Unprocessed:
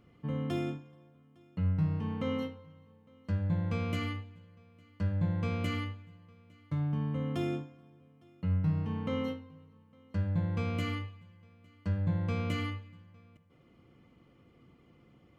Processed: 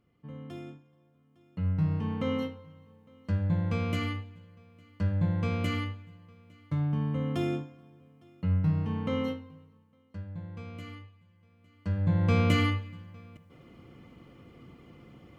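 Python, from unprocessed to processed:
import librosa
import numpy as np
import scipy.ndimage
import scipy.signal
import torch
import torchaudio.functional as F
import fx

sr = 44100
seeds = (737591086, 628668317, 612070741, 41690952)

y = fx.gain(x, sr, db=fx.line((0.77, -9.0), (1.91, 3.0), (9.51, 3.0), (10.26, -9.5), (11.01, -9.5), (11.93, 1.5), (12.35, 9.0)))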